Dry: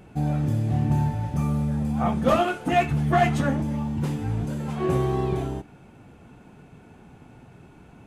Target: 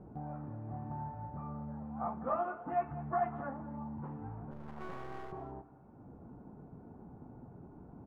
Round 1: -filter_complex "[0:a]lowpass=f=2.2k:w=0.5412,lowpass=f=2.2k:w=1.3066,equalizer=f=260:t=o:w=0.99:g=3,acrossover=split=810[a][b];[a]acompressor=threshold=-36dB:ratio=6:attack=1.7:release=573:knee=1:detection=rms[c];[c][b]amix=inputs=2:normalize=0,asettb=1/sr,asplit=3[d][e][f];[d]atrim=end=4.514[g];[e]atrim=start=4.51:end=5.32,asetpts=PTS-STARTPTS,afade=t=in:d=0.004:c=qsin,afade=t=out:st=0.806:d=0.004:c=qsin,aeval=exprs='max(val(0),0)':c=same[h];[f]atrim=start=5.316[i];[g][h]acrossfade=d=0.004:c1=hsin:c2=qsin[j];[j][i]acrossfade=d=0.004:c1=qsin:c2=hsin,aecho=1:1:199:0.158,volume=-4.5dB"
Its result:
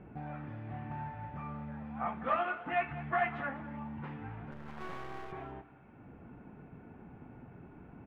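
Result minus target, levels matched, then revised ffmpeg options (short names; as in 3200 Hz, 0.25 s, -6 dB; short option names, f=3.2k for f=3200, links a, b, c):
2000 Hz band +10.5 dB
-filter_complex "[0:a]lowpass=f=1.1k:w=0.5412,lowpass=f=1.1k:w=1.3066,equalizer=f=260:t=o:w=0.99:g=3,acrossover=split=810[a][b];[a]acompressor=threshold=-36dB:ratio=6:attack=1.7:release=573:knee=1:detection=rms[c];[c][b]amix=inputs=2:normalize=0,asettb=1/sr,asplit=3[d][e][f];[d]atrim=end=4.514[g];[e]atrim=start=4.51:end=5.32,asetpts=PTS-STARTPTS,afade=t=in:d=0.004:c=qsin,afade=t=out:st=0.806:d=0.004:c=qsin,aeval=exprs='max(val(0),0)':c=same[h];[f]atrim=start=5.316[i];[g][h]acrossfade=d=0.004:c1=hsin:c2=qsin[j];[j][i]acrossfade=d=0.004:c1=qsin:c2=hsin,aecho=1:1:199:0.158,volume=-4.5dB"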